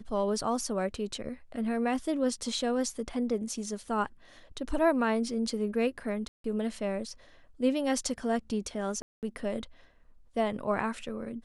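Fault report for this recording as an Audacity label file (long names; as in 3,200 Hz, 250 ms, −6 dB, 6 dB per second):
6.280000	6.440000	drop-out 163 ms
9.020000	9.230000	drop-out 208 ms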